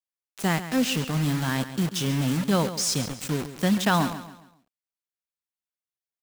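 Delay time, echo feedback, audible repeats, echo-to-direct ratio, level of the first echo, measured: 0.137 s, 37%, 3, -12.0 dB, -12.5 dB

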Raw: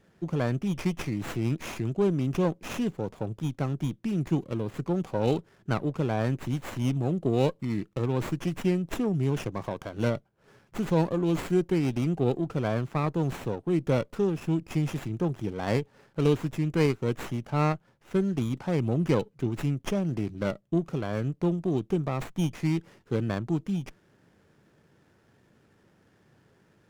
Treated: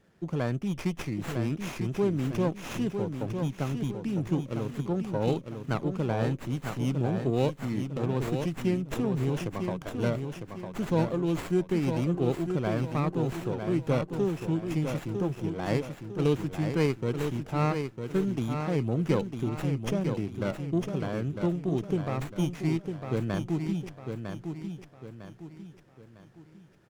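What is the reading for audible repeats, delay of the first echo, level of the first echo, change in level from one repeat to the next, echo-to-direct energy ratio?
4, 0.953 s, -6.5 dB, -8.0 dB, -6.0 dB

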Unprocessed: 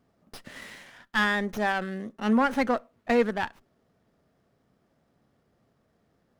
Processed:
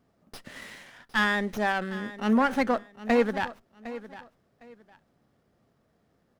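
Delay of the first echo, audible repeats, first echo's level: 0.758 s, 2, -15.5 dB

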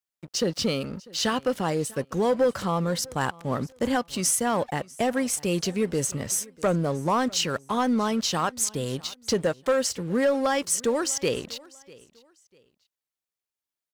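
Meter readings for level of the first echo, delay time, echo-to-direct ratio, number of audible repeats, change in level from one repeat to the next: -23.0 dB, 0.646 s, -22.5 dB, 2, -11.0 dB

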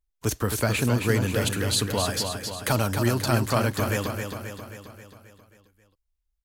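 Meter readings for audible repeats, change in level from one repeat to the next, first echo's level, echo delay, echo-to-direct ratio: 6, -5.0 dB, -6.0 dB, 0.267 s, -4.5 dB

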